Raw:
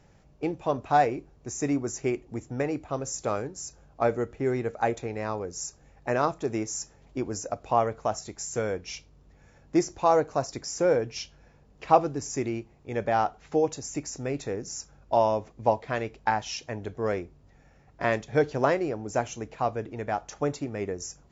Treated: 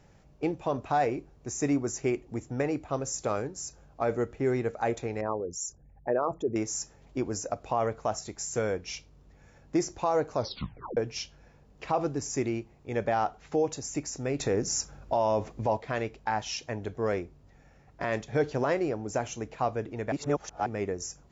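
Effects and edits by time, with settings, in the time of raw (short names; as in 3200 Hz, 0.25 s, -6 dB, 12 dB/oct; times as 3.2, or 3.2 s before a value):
5.21–6.56 formant sharpening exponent 2
10.34 tape stop 0.63 s
14.4–15.77 gain +7 dB
20.12–20.66 reverse
whole clip: limiter -17 dBFS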